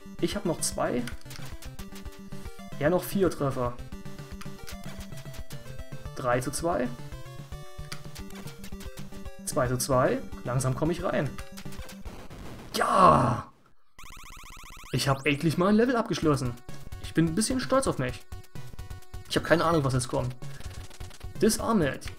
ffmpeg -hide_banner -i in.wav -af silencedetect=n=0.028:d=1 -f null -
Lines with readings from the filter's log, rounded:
silence_start: 13.41
silence_end: 14.93 | silence_duration: 1.52